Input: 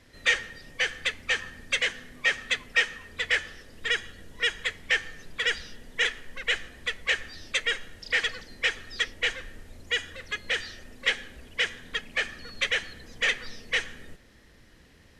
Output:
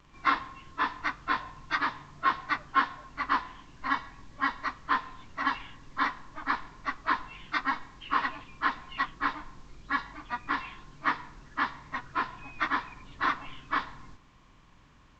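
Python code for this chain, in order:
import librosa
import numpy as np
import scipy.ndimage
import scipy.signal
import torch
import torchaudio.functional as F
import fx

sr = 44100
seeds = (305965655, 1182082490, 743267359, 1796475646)

y = fx.pitch_bins(x, sr, semitones=-9.5)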